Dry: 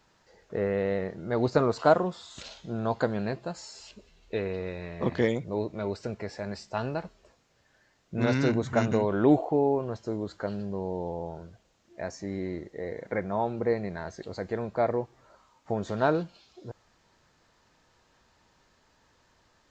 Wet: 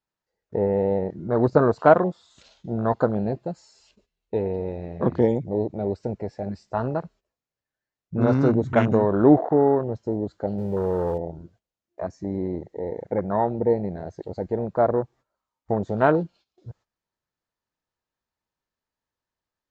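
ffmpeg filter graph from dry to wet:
-filter_complex "[0:a]asettb=1/sr,asplit=3[a][b][c];[a]atrim=end=10.584[d];[b]atrim=start=10.58:end=11.18,asetpts=PTS-STARTPTS,afade=t=in:d=0.004:c=qsin,afade=t=out:st=0.596:d=0.004:c=qsin,aeval=exprs='val(0)+0.5*0.0141*sgn(val(0))':c=same,aecho=1:1:2.1:0.32,atrim=end_sample=26460[e];[c]atrim=start=11.176[f];[d][e]acrossfade=d=0.004:c1=hsin:c2=qsin[g];[g][f]acrossfade=d=0.004:c1=qsin:c2=hsin,agate=range=-14dB:threshold=-52dB:ratio=16:detection=peak,afwtdn=0.0282,volume=6dB"

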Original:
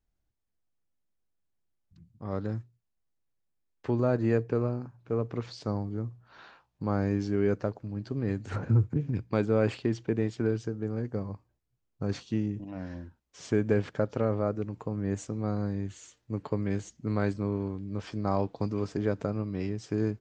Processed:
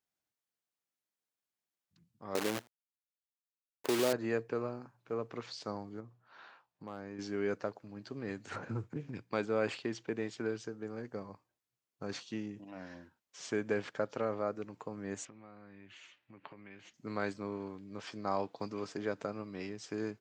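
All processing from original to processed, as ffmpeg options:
-filter_complex "[0:a]asettb=1/sr,asplit=3[a][b][c];[a]atrim=end=2.354[d];[b]atrim=start=2.35:end=4.13,asetpts=PTS-STARTPTS,afade=t=in:d=0.004:c=qsin,afade=t=out:st=1.776:d=0.004:c=qsin,equalizer=f=390:w=0.81:g=13.5,acompressor=threshold=-21dB:ratio=3:attack=3.2:release=140:knee=1:detection=peak,acrusher=bits=6:dc=4:mix=0:aa=0.000001[e];[c]atrim=start=4.126[f];[d][e]acrossfade=d=0.004:c1=hsin:c2=qsin[g];[g][f]acrossfade=d=0.004:c1=qsin:c2=hsin,asettb=1/sr,asplit=3[h][i][j];[h]atrim=end=6.004[k];[i]atrim=start=6:end=7.19,asetpts=PTS-STARTPTS,afade=t=in:d=0.004:c=qsin,afade=t=out:st=1.186:d=0.004:c=qsin,highshelf=f=3k:g=-8.5,acompressor=threshold=-36dB:ratio=2:attack=3.2:release=140:knee=1:detection=peak,asoftclip=type=hard:threshold=-25dB[l];[j]atrim=start=7.186[m];[k][l]acrossfade=d=0.004:c1=hsin:c2=qsin[n];[n][m]acrossfade=d=0.004:c1=qsin:c2=hsin,asettb=1/sr,asplit=3[o][p][q];[o]atrim=end=15.254[r];[p]atrim=start=15.25:end=16.94,asetpts=PTS-STARTPTS,afade=t=in:d=0.004:c=qsin,afade=t=out:st=1.686:d=0.004:c=qsin,acompressor=threshold=-40dB:ratio=6:attack=3.2:release=140:knee=1:detection=peak,lowpass=f=2.6k:t=q:w=2.6,bandreject=f=450:w=7.2[s];[q]atrim=start=16.936[t];[r][s]acrossfade=d=0.004:c1=hsin:c2=qsin[u];[u][t]acrossfade=d=0.004:c1=qsin:c2=hsin,highpass=150,lowshelf=f=500:g=-11.5"

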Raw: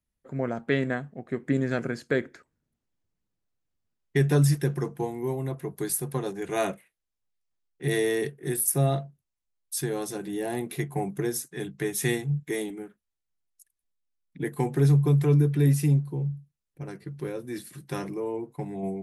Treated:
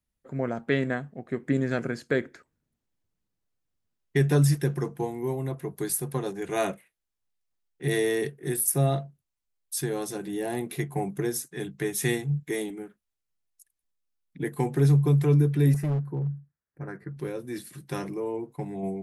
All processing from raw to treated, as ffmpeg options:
-filter_complex "[0:a]asettb=1/sr,asplit=3[a][b][c];[a]atrim=end=15.744[d];[b]atrim=start=15.74:end=17.17,asetpts=PTS-STARTPTS,afade=t=in:d=0.004:c=qsin,afade=t=out:st=1.426:d=0.004:c=qsin,highpass=50,highshelf=f=2.3k:t=q:w=3:g=-10.5,volume=23.5dB,asoftclip=hard,volume=-23.5dB[e];[c]atrim=start=17.166[f];[d][e]acrossfade=d=0.004:c1=hsin:c2=qsin[g];[g][f]acrossfade=d=0.004:c1=qsin:c2=hsin"

